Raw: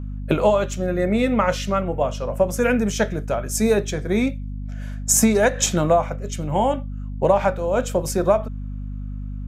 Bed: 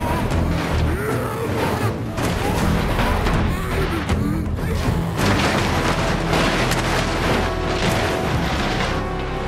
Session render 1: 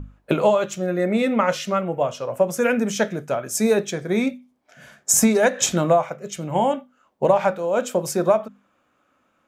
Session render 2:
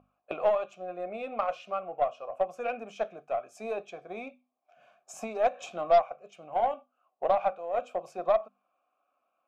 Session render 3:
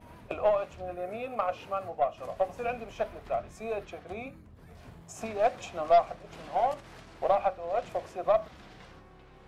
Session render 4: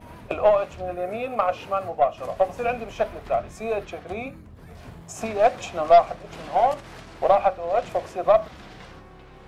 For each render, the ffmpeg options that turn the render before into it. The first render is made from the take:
-af "bandreject=f=50:t=h:w=6,bandreject=f=100:t=h:w=6,bandreject=f=150:t=h:w=6,bandreject=f=200:t=h:w=6,bandreject=f=250:t=h:w=6"
-filter_complex "[0:a]asplit=3[a][b][c];[a]bandpass=f=730:t=q:w=8,volume=0dB[d];[b]bandpass=f=1.09k:t=q:w=8,volume=-6dB[e];[c]bandpass=f=2.44k:t=q:w=8,volume=-9dB[f];[d][e][f]amix=inputs=3:normalize=0,aeval=exprs='0.251*(cos(1*acos(clip(val(0)/0.251,-1,1)))-cos(1*PI/2))+0.0126*(cos(4*acos(clip(val(0)/0.251,-1,1)))-cos(4*PI/2))+0.0158*(cos(5*acos(clip(val(0)/0.251,-1,1)))-cos(5*PI/2))+0.00158*(cos(6*acos(clip(val(0)/0.251,-1,1)))-cos(6*PI/2))+0.0158*(cos(7*acos(clip(val(0)/0.251,-1,1)))-cos(7*PI/2))':c=same"
-filter_complex "[1:a]volume=-30dB[a];[0:a][a]amix=inputs=2:normalize=0"
-af "volume=7.5dB"

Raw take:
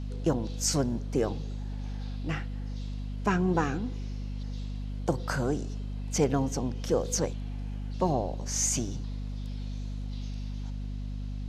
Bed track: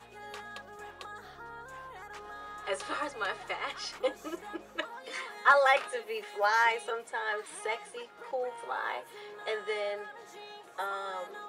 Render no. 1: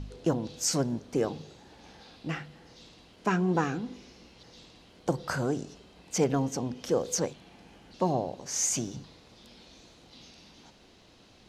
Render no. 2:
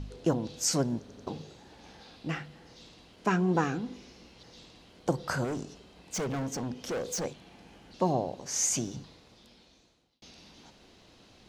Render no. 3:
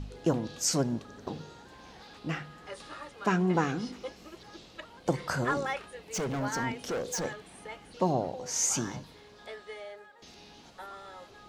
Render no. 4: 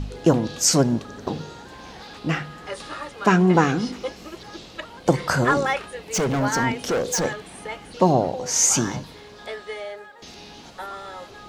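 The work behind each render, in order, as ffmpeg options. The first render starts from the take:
-af "bandreject=f=50:t=h:w=4,bandreject=f=100:t=h:w=4,bandreject=f=150:t=h:w=4,bandreject=f=200:t=h:w=4,bandreject=f=250:t=h:w=4"
-filter_complex "[0:a]asettb=1/sr,asplit=3[a][b][c];[a]atrim=end=5.444[d];[b]atrim=start=5.44:end=7.25,asetpts=PTS-STARTPTS,afade=t=in:d=0.004:c=qsin,afade=t=out:st=1.806:d=0.004:c=qsin,asoftclip=type=hard:threshold=-30dB[e];[c]atrim=start=7.246[f];[d][e]acrossfade=d=0.004:c1=hsin:c2=qsin[g];[g][f]acrossfade=d=0.004:c1=qsin:c2=hsin,asplit=5[h][i][j][k][l];[h]atrim=end=1.092[m];[i]atrim=start=0.998:end=1.092[n];[j]atrim=start=0.998:end=1.092[o];[k]atrim=start=1.268:end=10.22,asetpts=PTS-STARTPTS,afade=t=out:st=7.722:d=1.23[p];[l]atrim=start=10.22,asetpts=PTS-STARTPTS,afade=t=in:d=0.004:c=hsin[q];[m][n]acrossfade=d=0.004:c1=hsin:c2=hsin[r];[r][o]acrossfade=d=0.004:c1=hsin:c2=hsin[s];[p][q]concat=n=2:v=0:a=1[t];[s][t]acrossfade=d=0.004:c1=hsin:c2=hsin"
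-filter_complex "[1:a]volume=-9.5dB[a];[0:a][a]amix=inputs=2:normalize=0"
-af "volume=10dB"

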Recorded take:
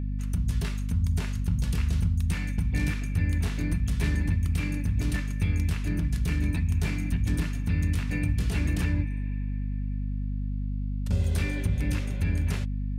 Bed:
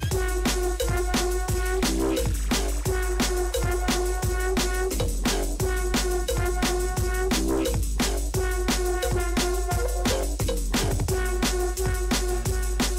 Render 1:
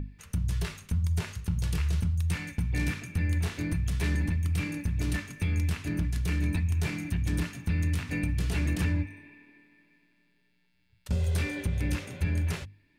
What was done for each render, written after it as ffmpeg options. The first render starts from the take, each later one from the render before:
-af "bandreject=f=50:t=h:w=6,bandreject=f=100:t=h:w=6,bandreject=f=150:t=h:w=6,bandreject=f=200:t=h:w=6,bandreject=f=250:t=h:w=6"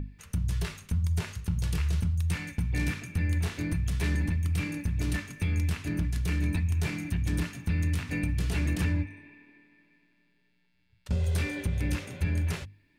-filter_complex "[0:a]asettb=1/sr,asplit=3[a][b][c];[a]atrim=end=9.044[d];[b]atrim=start=9.04:end=11.26,asetpts=PTS-STARTPTS,afade=t=in:d=0.004:c=qsin,afade=t=out:st=2.216:d=0.004:c=qsin,highshelf=f=9.4k:g=-11[e];[c]atrim=start=11.256[f];[d][e]acrossfade=d=0.004:c1=hsin:c2=qsin[g];[g][f]acrossfade=d=0.004:c1=qsin:c2=hsin"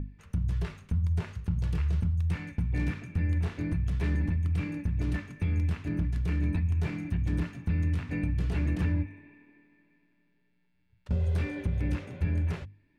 -af "lowpass=f=1.3k:p=1"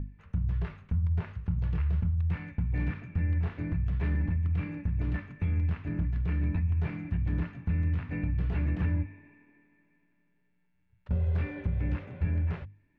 -af "lowpass=2.3k,equalizer=f=330:t=o:w=1.2:g=-4"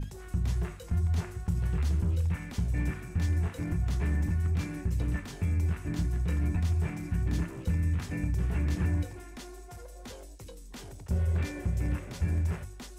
-filter_complex "[1:a]volume=-20.5dB[a];[0:a][a]amix=inputs=2:normalize=0"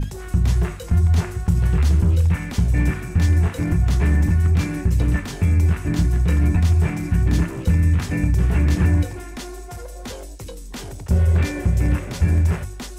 -af "volume=11.5dB"

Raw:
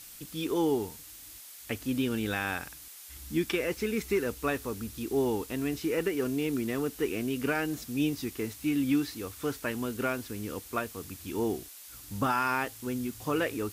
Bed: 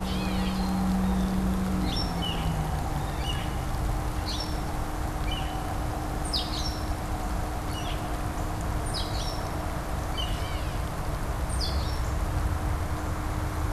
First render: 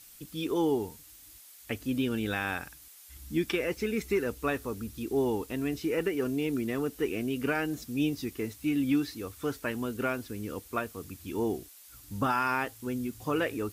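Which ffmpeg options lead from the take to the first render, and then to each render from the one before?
-af "afftdn=nr=6:nf=-48"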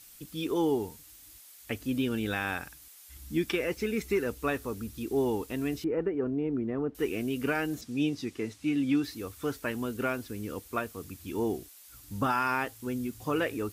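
-filter_complex "[0:a]asettb=1/sr,asplit=3[a][b][c];[a]atrim=end=5.844[d];[b]atrim=start=5.84:end=6.95,asetpts=PTS-STARTPTS,afade=t=in:d=0.004:c=qsin,afade=t=out:st=1.106:d=0.004:c=qsin,lowpass=1.1k[e];[c]atrim=start=6.946[f];[d][e]acrossfade=d=0.004:c1=hsin:c2=qsin[g];[g][f]acrossfade=d=0.004:c1=qsin:c2=hsin,asettb=1/sr,asplit=3[h][i][j];[h]atrim=end=7.814[k];[i]atrim=start=7.81:end=9.04,asetpts=PTS-STARTPTS,afade=t=in:d=0.004:c=qsin,afade=t=out:st=1.226:d=0.004:c=qsin,highpass=100,lowpass=7.7k[l];[j]atrim=start=9.036[m];[k][l]acrossfade=d=0.004:c1=hsin:c2=qsin[n];[n][m]acrossfade=d=0.004:c1=qsin:c2=hsin"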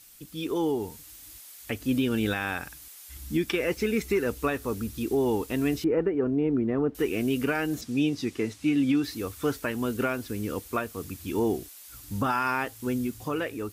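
-af "alimiter=limit=-21.5dB:level=0:latency=1:release=231,dynaudnorm=f=140:g=11:m=5.5dB"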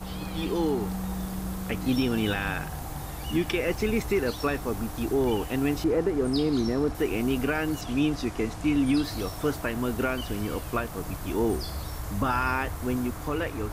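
-filter_complex "[1:a]volume=-6.5dB[a];[0:a][a]amix=inputs=2:normalize=0"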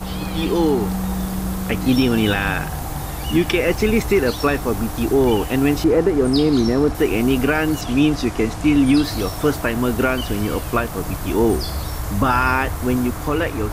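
-af "volume=9dB"

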